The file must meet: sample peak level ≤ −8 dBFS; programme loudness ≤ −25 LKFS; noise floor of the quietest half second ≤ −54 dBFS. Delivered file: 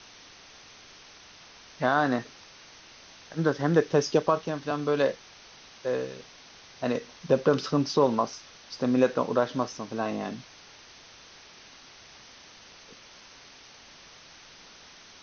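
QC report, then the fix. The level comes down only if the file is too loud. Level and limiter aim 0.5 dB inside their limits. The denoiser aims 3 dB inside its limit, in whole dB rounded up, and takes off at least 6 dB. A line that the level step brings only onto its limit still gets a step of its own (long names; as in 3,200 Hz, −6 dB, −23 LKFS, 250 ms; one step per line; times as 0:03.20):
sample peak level −9.0 dBFS: in spec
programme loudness −27.5 LKFS: in spec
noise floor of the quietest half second −51 dBFS: out of spec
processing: broadband denoise 6 dB, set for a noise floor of −51 dBFS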